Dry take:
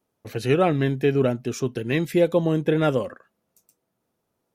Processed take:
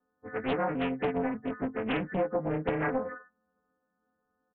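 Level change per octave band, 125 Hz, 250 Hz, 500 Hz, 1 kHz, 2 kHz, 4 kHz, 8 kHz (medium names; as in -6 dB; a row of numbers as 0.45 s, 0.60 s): -14.0 dB, -8.5 dB, -9.5 dB, -3.5 dB, -4.5 dB, -9.0 dB, under -35 dB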